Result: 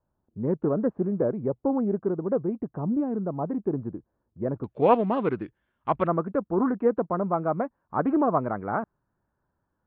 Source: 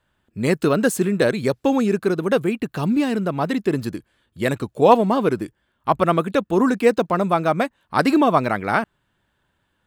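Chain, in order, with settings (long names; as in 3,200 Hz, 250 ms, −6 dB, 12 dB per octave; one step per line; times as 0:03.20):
low-pass filter 1,000 Hz 24 dB per octave, from 0:04.64 2,900 Hz, from 0:06.07 1,300 Hz
highs frequency-modulated by the lows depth 0.12 ms
level −6.5 dB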